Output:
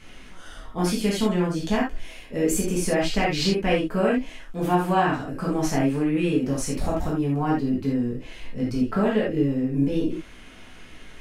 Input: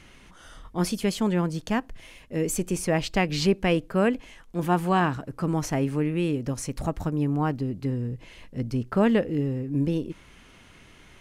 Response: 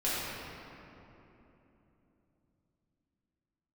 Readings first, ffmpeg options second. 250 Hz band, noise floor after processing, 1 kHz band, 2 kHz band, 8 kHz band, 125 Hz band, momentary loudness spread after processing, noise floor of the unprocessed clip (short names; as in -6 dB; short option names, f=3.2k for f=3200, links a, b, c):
+2.5 dB, -44 dBFS, +2.5 dB, +2.0 dB, +3.0 dB, -0.5 dB, 8 LU, -52 dBFS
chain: -filter_complex "[0:a]acompressor=threshold=-24dB:ratio=2.5[a];[1:a]atrim=start_sample=2205,afade=t=out:st=0.14:d=0.01,atrim=end_sample=6615[b];[a][b]afir=irnorm=-1:irlink=0"